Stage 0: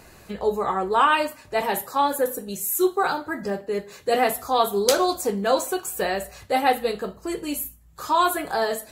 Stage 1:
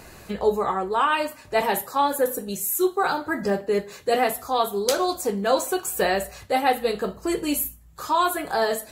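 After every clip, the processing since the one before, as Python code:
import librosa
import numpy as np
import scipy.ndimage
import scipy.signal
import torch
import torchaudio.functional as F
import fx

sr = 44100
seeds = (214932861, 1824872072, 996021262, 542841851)

y = fx.rider(x, sr, range_db=4, speed_s=0.5)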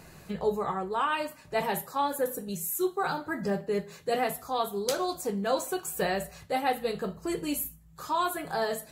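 y = fx.peak_eq(x, sr, hz=160.0, db=12.5, octaves=0.36)
y = y * librosa.db_to_amplitude(-7.0)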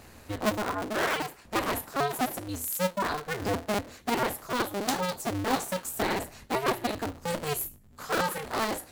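y = fx.cycle_switch(x, sr, every=2, mode='inverted')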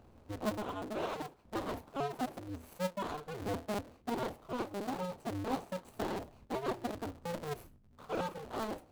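y = scipy.ndimage.median_filter(x, 25, mode='constant')
y = y * librosa.db_to_amplitude(-7.0)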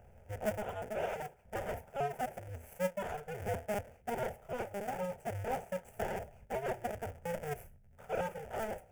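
y = fx.fixed_phaser(x, sr, hz=1100.0, stages=6)
y = y * librosa.db_to_amplitude(3.5)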